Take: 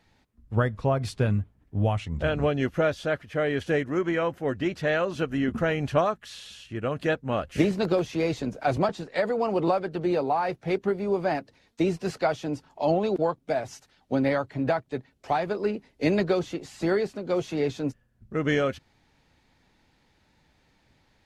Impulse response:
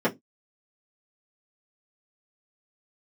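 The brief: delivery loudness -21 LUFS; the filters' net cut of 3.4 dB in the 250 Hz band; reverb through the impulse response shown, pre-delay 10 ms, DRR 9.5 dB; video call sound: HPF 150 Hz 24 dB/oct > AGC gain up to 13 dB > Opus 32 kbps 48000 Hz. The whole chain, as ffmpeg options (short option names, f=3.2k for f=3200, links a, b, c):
-filter_complex "[0:a]equalizer=f=250:t=o:g=-4.5,asplit=2[a][b];[1:a]atrim=start_sample=2205,adelay=10[c];[b][c]afir=irnorm=-1:irlink=0,volume=-23.5dB[d];[a][d]amix=inputs=2:normalize=0,highpass=f=150:w=0.5412,highpass=f=150:w=1.3066,dynaudnorm=m=13dB,volume=3dB" -ar 48000 -c:a libopus -b:a 32k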